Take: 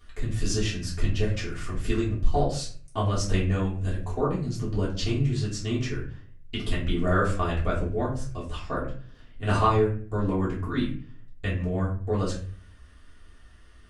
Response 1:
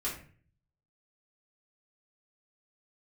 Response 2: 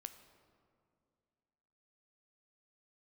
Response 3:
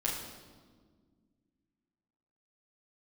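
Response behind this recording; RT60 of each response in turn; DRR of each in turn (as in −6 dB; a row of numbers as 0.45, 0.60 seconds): 1; 0.45, 2.3, 1.7 seconds; −8.0, 9.0, −5.5 decibels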